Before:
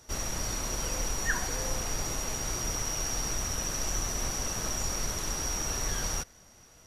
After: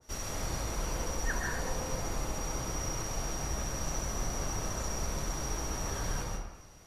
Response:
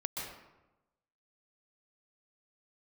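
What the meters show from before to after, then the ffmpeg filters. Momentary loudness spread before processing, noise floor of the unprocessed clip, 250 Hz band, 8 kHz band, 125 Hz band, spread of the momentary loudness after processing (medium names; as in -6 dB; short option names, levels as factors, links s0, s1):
2 LU, -56 dBFS, 0.0 dB, -6.5 dB, +0.5 dB, 2 LU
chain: -filter_complex "[1:a]atrim=start_sample=2205[s0];[0:a][s0]afir=irnorm=-1:irlink=0,adynamicequalizer=threshold=0.00447:dfrequency=1600:dqfactor=0.7:tfrequency=1600:tqfactor=0.7:attack=5:release=100:ratio=0.375:range=2.5:mode=cutabove:tftype=highshelf,volume=0.75"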